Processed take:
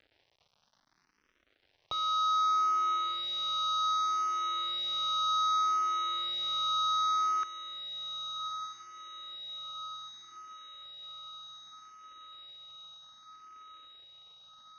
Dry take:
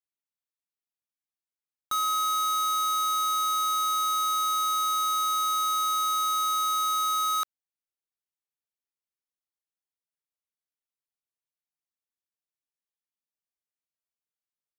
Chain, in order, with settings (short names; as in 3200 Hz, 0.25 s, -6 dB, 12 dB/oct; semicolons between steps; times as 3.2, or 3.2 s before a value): median filter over 9 samples; Chebyshev low-pass 6000 Hz, order 8; upward compressor, threshold -35 dBFS; diffused feedback echo 1.185 s, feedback 72%, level -10 dB; endless phaser +0.65 Hz